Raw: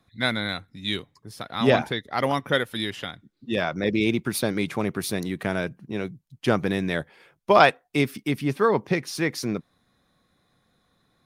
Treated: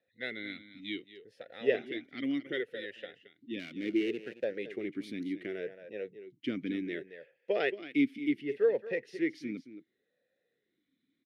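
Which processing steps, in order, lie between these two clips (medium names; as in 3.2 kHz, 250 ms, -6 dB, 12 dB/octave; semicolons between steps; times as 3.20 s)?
3.59–4.44 s: dead-time distortion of 0.17 ms; delay 223 ms -13 dB; talking filter e-i 0.68 Hz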